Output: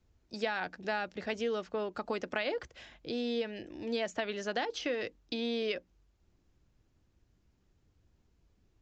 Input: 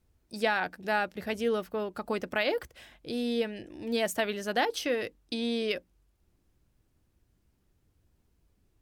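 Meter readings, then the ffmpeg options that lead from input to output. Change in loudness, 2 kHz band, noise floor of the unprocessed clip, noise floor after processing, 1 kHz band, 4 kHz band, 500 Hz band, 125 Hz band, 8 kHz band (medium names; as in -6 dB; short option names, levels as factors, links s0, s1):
-4.5 dB, -5.0 dB, -72 dBFS, -72 dBFS, -6.0 dB, -4.0 dB, -4.0 dB, -5.0 dB, -8.5 dB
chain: -filter_complex "[0:a]acrossover=split=230|3500[s0][s1][s2];[s0]acompressor=threshold=0.00282:ratio=4[s3];[s1]acompressor=threshold=0.0282:ratio=4[s4];[s2]acompressor=threshold=0.00562:ratio=4[s5];[s3][s4][s5]amix=inputs=3:normalize=0,aresample=16000,aresample=44100"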